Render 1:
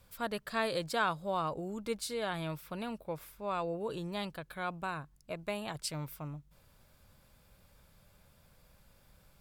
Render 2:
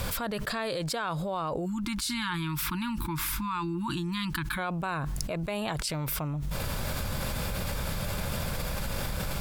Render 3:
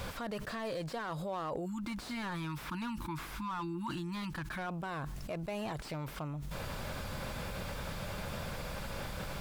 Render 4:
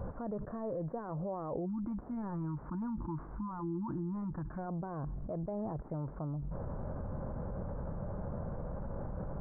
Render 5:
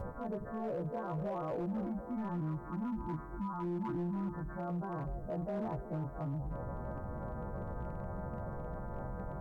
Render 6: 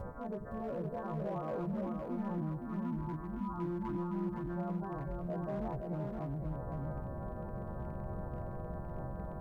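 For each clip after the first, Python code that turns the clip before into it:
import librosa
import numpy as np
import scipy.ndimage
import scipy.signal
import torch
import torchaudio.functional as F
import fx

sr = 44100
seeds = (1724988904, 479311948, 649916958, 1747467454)

y1 = fx.spec_erase(x, sr, start_s=1.66, length_s=2.92, low_hz=350.0, high_hz=850.0)
y1 = fx.high_shelf(y1, sr, hz=11000.0, db=-4.0)
y1 = fx.env_flatten(y1, sr, amount_pct=100)
y1 = y1 * 10.0 ** (-3.5 / 20.0)
y2 = fx.low_shelf(y1, sr, hz=170.0, db=-6.0)
y2 = fx.slew_limit(y2, sr, full_power_hz=36.0)
y2 = y2 * 10.0 ** (-4.5 / 20.0)
y3 = scipy.ndimage.gaussian_filter1d(y2, 9.1, mode='constant')
y3 = y3 * 10.0 ** (2.5 / 20.0)
y4 = fx.freq_snap(y3, sr, grid_st=2)
y4 = fx.echo_stepped(y4, sr, ms=244, hz=410.0, octaves=0.7, feedback_pct=70, wet_db=-7.5)
y4 = np.clip(y4, -10.0 ** (-33.5 / 20.0), 10.0 ** (-33.5 / 20.0))
y4 = y4 * 10.0 ** (1.5 / 20.0)
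y5 = y4 + 10.0 ** (-3.5 / 20.0) * np.pad(y4, (int(513 * sr / 1000.0), 0))[:len(y4)]
y5 = y5 * 10.0 ** (-1.5 / 20.0)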